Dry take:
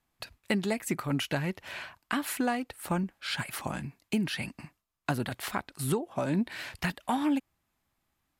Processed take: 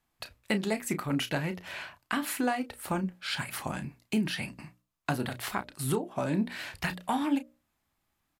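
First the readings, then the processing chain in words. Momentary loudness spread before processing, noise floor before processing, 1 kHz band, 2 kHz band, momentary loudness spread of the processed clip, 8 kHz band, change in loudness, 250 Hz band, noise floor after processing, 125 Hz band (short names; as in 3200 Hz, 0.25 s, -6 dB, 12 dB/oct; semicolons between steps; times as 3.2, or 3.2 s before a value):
10 LU, -80 dBFS, +0.5 dB, +0.5 dB, 10 LU, +0.5 dB, 0.0 dB, 0.0 dB, -79 dBFS, -1.0 dB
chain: notches 60/120/180/240/300/360/420/480/540/600 Hz; doubler 32 ms -11.5 dB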